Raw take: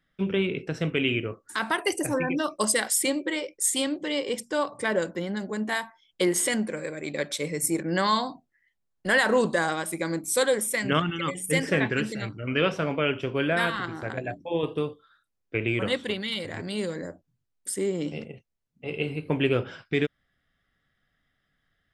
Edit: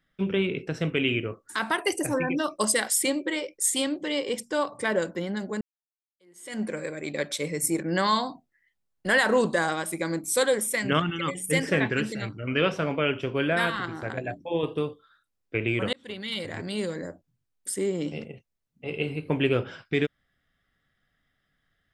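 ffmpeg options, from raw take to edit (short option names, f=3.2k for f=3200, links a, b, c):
-filter_complex "[0:a]asplit=3[a][b][c];[a]atrim=end=5.61,asetpts=PTS-STARTPTS,afade=t=out:st=5.606:d=0.004:c=hsin[d];[b]atrim=start=5.61:end=15.93,asetpts=PTS-STARTPTS,afade=t=in:d=1.02:c=exp,afade=t=out:st=10.316:d=0.004:c=hsin[e];[c]atrim=start=15.93,asetpts=PTS-STARTPTS,afade=t=in:d=0.46[f];[d][e][f]concat=n=3:v=0:a=1"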